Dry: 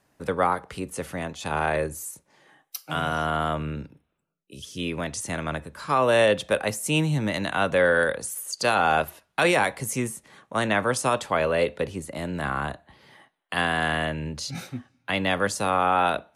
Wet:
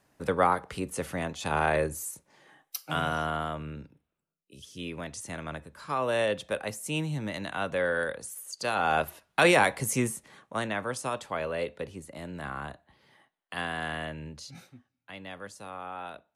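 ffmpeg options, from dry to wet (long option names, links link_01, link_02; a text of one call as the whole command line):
ffmpeg -i in.wav -af "volume=7dB,afade=type=out:start_time=2.84:duration=0.68:silence=0.446684,afade=type=in:start_time=8.67:duration=0.73:silence=0.398107,afade=type=out:start_time=10.1:duration=0.62:silence=0.354813,afade=type=out:start_time=14.24:duration=0.53:silence=0.354813" out.wav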